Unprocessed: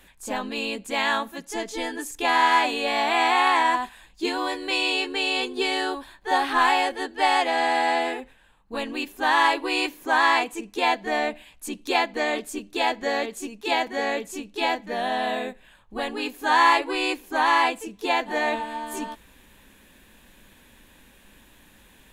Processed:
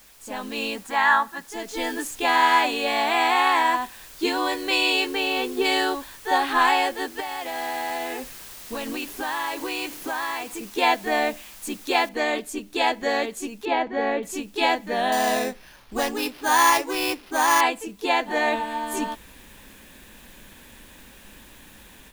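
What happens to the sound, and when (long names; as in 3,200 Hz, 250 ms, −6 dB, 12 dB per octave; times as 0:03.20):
0:00.76–0:01.49: gain on a spectral selection 690–2,000 Hz +12 dB
0:05.09–0:05.64: low-pass filter 3,100 Hz → 1,200 Hz 6 dB per octave
0:07.20–0:10.61: downward compressor 4 to 1, threshold −33 dBFS
0:12.09: noise floor change −47 dB −61 dB
0:13.65–0:14.23: head-to-tape spacing loss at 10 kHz 31 dB
0:15.12–0:17.61: sample-rate reduction 7,800 Hz
whole clip: automatic gain control; level −6 dB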